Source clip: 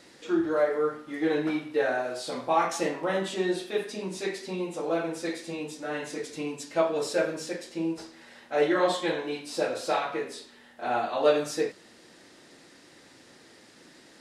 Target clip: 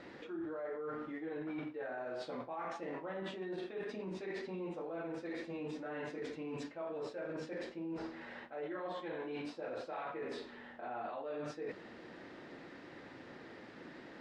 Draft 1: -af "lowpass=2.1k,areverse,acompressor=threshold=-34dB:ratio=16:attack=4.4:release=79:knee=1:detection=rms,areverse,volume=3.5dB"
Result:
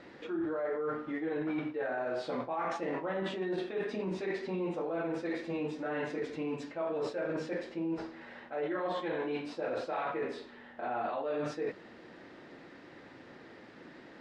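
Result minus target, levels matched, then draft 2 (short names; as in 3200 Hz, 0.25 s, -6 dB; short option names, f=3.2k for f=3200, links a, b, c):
compressor: peak gain reduction -7.5 dB
-af "lowpass=2.1k,areverse,acompressor=threshold=-42dB:ratio=16:attack=4.4:release=79:knee=1:detection=rms,areverse,volume=3.5dB"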